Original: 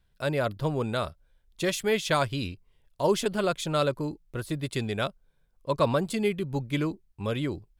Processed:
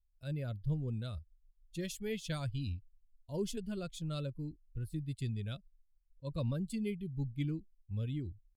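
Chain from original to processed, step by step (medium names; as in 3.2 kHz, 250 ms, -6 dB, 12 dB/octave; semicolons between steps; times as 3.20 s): expander on every frequency bin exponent 1.5; amplifier tone stack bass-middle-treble 10-0-1; tempo 0.91×; trim +11 dB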